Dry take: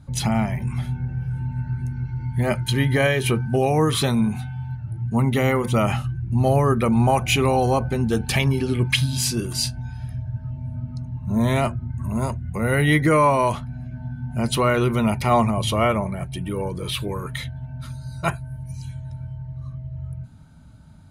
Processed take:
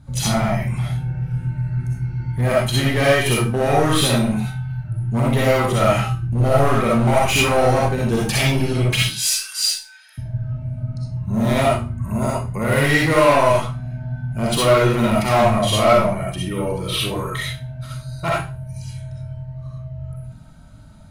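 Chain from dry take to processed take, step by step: 9.02–10.18 HPF 1300 Hz 24 dB/oct; 18.14–18.77 high shelf 3400 Hz -4.5 dB; hard clip -17 dBFS, distortion -12 dB; reverb RT60 0.35 s, pre-delay 20 ms, DRR -5 dB

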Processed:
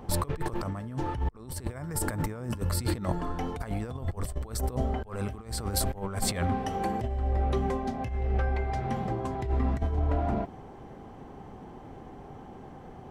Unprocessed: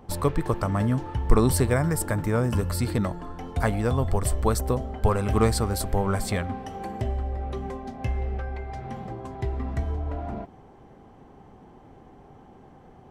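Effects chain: negative-ratio compressor -29 dBFS, ratio -0.5

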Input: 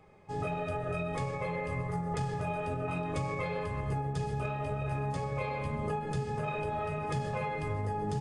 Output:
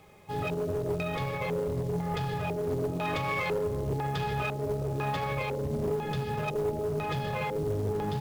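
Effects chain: 2.92–5.35 bell 1600 Hz +7.5 dB 2.8 oct; limiter -25 dBFS, peak gain reduction 6.5 dB; LFO low-pass square 1 Hz 410–3700 Hz; companded quantiser 6-bit; one-sided clip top -30.5 dBFS; gain +3 dB

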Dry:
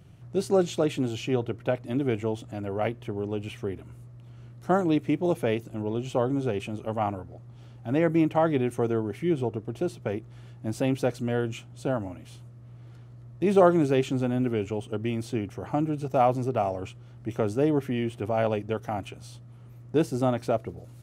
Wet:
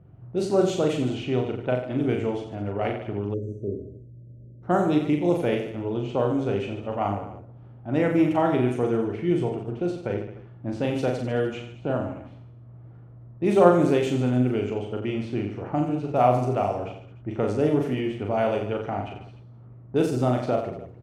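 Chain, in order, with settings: low-pass opened by the level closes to 1000 Hz, open at -20 dBFS; reverse bouncing-ball echo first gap 40 ms, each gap 1.2×, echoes 5; spectral delete 3.34–4.63, 640–5800 Hz

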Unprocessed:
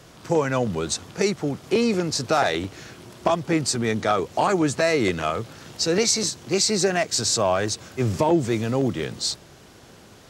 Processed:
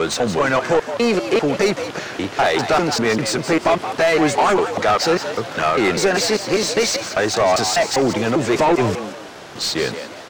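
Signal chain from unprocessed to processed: slices in reverse order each 0.199 s, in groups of 5; overdrive pedal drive 22 dB, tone 2400 Hz, clips at -7.5 dBFS; frequency-shifting echo 0.173 s, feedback 34%, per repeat +100 Hz, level -10 dB

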